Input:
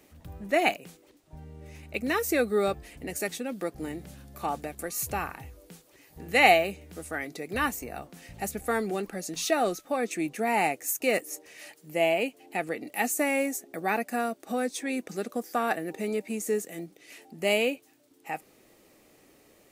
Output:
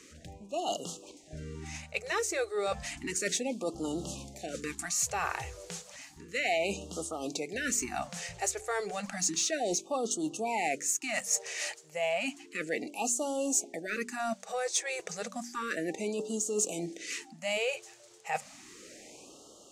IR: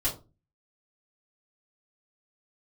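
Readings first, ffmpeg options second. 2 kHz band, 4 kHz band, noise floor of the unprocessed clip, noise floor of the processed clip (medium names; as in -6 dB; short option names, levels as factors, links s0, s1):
-5.5 dB, -1.5 dB, -60 dBFS, -55 dBFS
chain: -filter_complex "[0:a]areverse,acompressor=threshold=0.0141:ratio=6,areverse,lowpass=f=6900:t=q:w=2.5,dynaudnorm=f=110:g=11:m=1.58,lowshelf=f=160:g=-10,bandreject=f=47.75:t=h:w=4,bandreject=f=95.5:t=h:w=4,bandreject=f=143.25:t=h:w=4,bandreject=f=191:t=h:w=4,bandreject=f=238.75:t=h:w=4,bandreject=f=286.5:t=h:w=4,bandreject=f=334.25:t=h:w=4,bandreject=f=382:t=h:w=4,bandreject=f=429.75:t=h:w=4,asplit=2[s0][s1];[s1]asoftclip=type=tanh:threshold=0.0211,volume=0.335[s2];[s0][s2]amix=inputs=2:normalize=0,afftfilt=real='re*(1-between(b*sr/1024,220*pow(2000/220,0.5+0.5*sin(2*PI*0.32*pts/sr))/1.41,220*pow(2000/220,0.5+0.5*sin(2*PI*0.32*pts/sr))*1.41))':imag='im*(1-between(b*sr/1024,220*pow(2000/220,0.5+0.5*sin(2*PI*0.32*pts/sr))/1.41,220*pow(2000/220,0.5+0.5*sin(2*PI*0.32*pts/sr))*1.41))':win_size=1024:overlap=0.75,volume=1.41"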